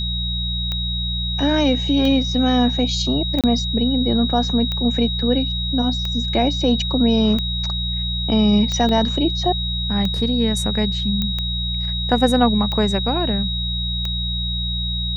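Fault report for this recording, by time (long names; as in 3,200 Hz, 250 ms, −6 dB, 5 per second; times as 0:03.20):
mains hum 60 Hz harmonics 3 −25 dBFS
scratch tick 45 rpm −12 dBFS
whistle 3,800 Hz −24 dBFS
0:03.41–0:03.44: drop-out 27 ms
0:08.89: drop-out 2.3 ms
0:11.22: click −10 dBFS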